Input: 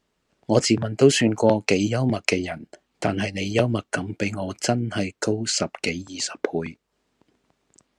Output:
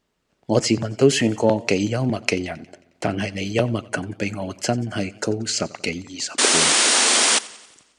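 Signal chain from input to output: painted sound noise, 6.38–7.39, 210–9800 Hz -17 dBFS; warbling echo 90 ms, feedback 58%, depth 84 cents, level -21 dB

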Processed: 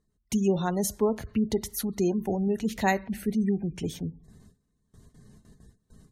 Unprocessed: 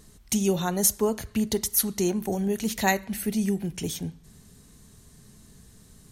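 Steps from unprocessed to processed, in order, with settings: gate with hold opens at -41 dBFS; high shelf 8000 Hz -2 dB; spectral gate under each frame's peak -30 dB strong; high shelf 3300 Hz -10.5 dB

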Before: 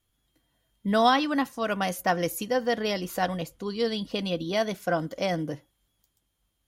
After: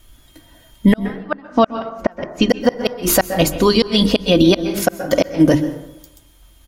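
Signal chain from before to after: low shelf 75 Hz +10.5 dB; notches 50/100/150/200/250/300/350/400 Hz; comb 3.2 ms, depth 39%; flipped gate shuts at -17 dBFS, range -42 dB; 0.99–2.5 air absorption 190 m; plate-style reverb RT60 0.87 s, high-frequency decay 0.45×, pre-delay 0.115 s, DRR 14 dB; maximiser +25 dB; gain -2 dB

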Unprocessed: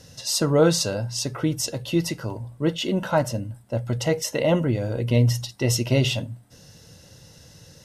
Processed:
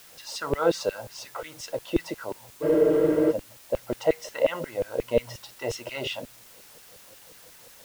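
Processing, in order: LFO high-pass saw down 5.6 Hz 400–2800 Hz; RIAA curve playback; in parallel at -8 dB: requantised 6-bit, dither triangular; on the sum: spectral freeze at 2.65, 0.65 s; gain -7 dB

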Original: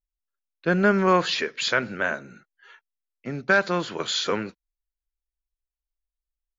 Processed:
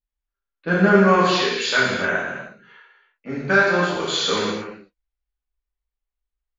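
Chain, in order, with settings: non-linear reverb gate 0.41 s falling, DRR -8 dB; low-pass opened by the level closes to 2900 Hz, open at -17 dBFS; gain -4 dB

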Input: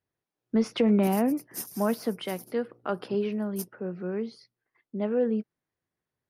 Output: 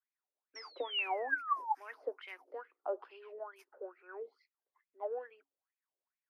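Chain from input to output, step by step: rippled Chebyshev high-pass 270 Hz, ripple 6 dB; painted sound fall, 0.55–1.75, 800–5700 Hz -31 dBFS; wah 2.3 Hz 520–2500 Hz, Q 7.9; gain +6 dB

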